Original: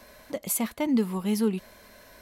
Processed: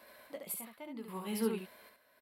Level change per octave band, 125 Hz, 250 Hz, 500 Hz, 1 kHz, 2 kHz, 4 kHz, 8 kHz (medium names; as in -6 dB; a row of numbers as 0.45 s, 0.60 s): -13.5 dB, -14.0 dB, -8.5 dB, -9.0 dB, -9.5 dB, -9.0 dB, -12.5 dB